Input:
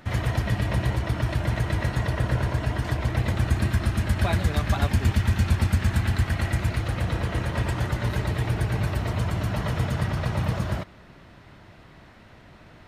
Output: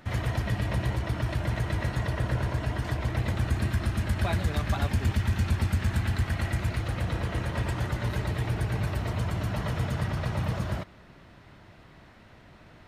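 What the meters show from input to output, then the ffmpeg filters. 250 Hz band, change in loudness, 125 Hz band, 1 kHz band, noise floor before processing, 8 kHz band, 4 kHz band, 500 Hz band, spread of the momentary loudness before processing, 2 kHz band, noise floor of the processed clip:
-3.5 dB, -3.5 dB, -3.5 dB, -3.5 dB, -50 dBFS, -4.0 dB, -3.5 dB, -3.5 dB, 4 LU, -3.5 dB, -53 dBFS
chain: -af "asoftclip=type=tanh:threshold=-12.5dB,volume=-3dB"

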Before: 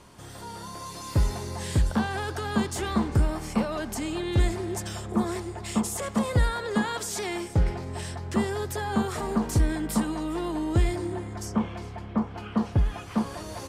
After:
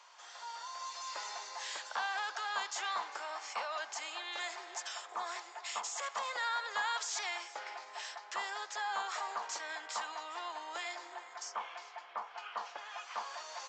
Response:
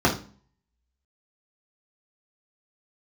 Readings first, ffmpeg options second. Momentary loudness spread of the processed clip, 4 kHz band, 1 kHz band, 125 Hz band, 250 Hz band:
9 LU, -2.5 dB, -4.0 dB, under -40 dB, -38.0 dB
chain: -af "highpass=f=780:w=0.5412,highpass=f=780:w=1.3066,aresample=16000,aresample=44100,volume=-2.5dB"

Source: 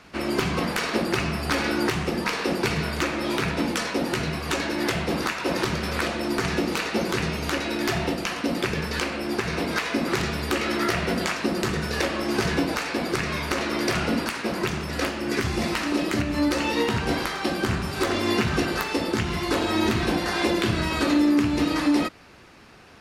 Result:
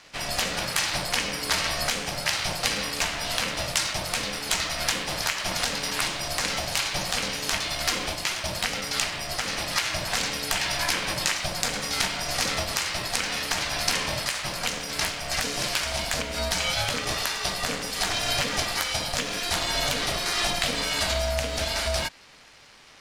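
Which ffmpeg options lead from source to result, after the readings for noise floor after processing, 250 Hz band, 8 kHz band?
-34 dBFS, -14.5 dB, +8.5 dB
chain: -af "crystalizer=i=8.5:c=0,aeval=exprs='val(0)*sin(2*PI*360*n/s)':c=same,adynamicsmooth=sensitivity=8:basefreq=6.2k,volume=-5.5dB"

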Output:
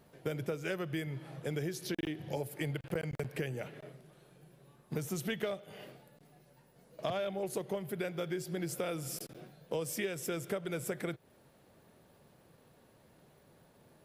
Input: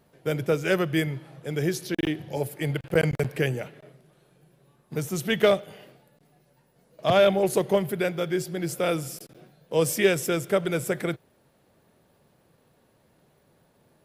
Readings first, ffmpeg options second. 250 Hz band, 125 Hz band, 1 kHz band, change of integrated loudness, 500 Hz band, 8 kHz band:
-11.0 dB, -10.0 dB, -13.0 dB, -12.5 dB, -13.5 dB, -9.0 dB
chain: -af "acompressor=threshold=-33dB:ratio=10"

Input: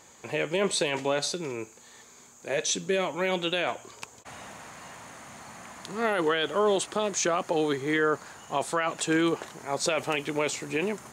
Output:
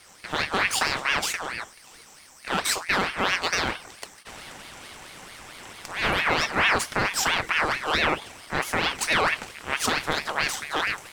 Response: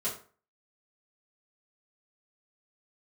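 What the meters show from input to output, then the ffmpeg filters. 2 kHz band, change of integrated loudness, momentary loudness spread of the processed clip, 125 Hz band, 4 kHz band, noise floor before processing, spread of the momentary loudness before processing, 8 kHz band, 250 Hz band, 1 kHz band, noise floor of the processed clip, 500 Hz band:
+8.0 dB, +3.5 dB, 19 LU, +1.5 dB, +5.5 dB, -53 dBFS, 18 LU, +1.5 dB, -4.5 dB, +5.0 dB, -51 dBFS, -5.5 dB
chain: -filter_complex "[0:a]aeval=exprs='if(lt(val(0),0),0.251*val(0),val(0))':c=same,asplit=2[a][b];[b]highpass=f=820:w=0.5412,highpass=f=820:w=1.3066[c];[1:a]atrim=start_sample=2205[d];[c][d]afir=irnorm=-1:irlink=0,volume=-9.5dB[e];[a][e]amix=inputs=2:normalize=0,aeval=exprs='val(0)*sin(2*PI*1500*n/s+1500*0.5/4.5*sin(2*PI*4.5*n/s))':c=same,volume=7dB"

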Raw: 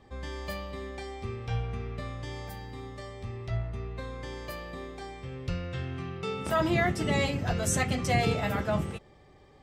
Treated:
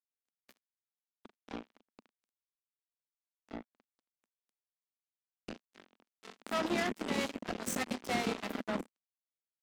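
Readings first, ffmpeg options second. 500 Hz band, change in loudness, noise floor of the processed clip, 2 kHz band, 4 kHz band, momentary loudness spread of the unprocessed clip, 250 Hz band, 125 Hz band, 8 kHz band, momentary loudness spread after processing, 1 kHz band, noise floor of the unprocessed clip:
-8.5 dB, -4.0 dB, under -85 dBFS, -7.5 dB, -5.5 dB, 15 LU, -6.5 dB, -20.5 dB, -8.0 dB, 18 LU, -8.0 dB, -56 dBFS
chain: -af "aeval=exprs='sgn(val(0))*max(abs(val(0))-0.00158,0)':c=same,acrusher=bits=3:mix=0:aa=0.5,lowshelf=f=170:t=q:w=3:g=-10,volume=-8dB"

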